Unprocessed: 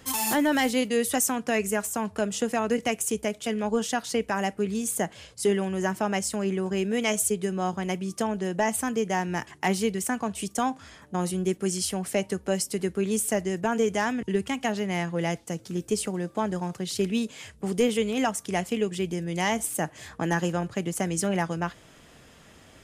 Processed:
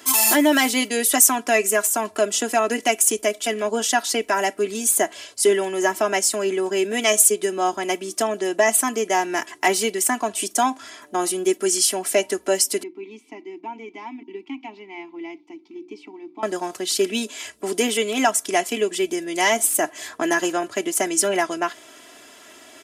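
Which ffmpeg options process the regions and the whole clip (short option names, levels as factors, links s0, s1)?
-filter_complex "[0:a]asettb=1/sr,asplit=3[s0][s1][s2];[s0]atrim=end=12.834[s3];[s1]atrim=start=12.83:end=16.43,asetpts=PTS-STARTPTS,afade=t=in:d=0.004:c=qsin,afade=t=out:st=3.596:d=0.004:c=qsin,asplit=3[s4][s5][s6];[s4]bandpass=f=300:t=q:w=8,volume=1[s7];[s5]bandpass=f=870:t=q:w=8,volume=0.501[s8];[s6]bandpass=f=2240:t=q:w=8,volume=0.355[s9];[s7][s8][s9]amix=inputs=3:normalize=0,highshelf=f=6600:t=q:w=1.5:g=-11,bandreject=f=60:t=h:w=6,bandreject=f=120:t=h:w=6,bandreject=f=180:t=h:w=6,bandreject=f=240:t=h:w=6,bandreject=f=300:t=h:w=6,bandreject=f=360:t=h:w=6[s10];[s2]atrim=start=16.426[s11];[s3][s10]acrossfade=d=0.004:c1=hsin:c2=qsin[s12];[s12][s11]acrossfade=d=0.004:c1=qsin:c2=hsin,highpass=310,highshelf=f=4700:g=5,aecho=1:1:3:0.75,volume=1.88"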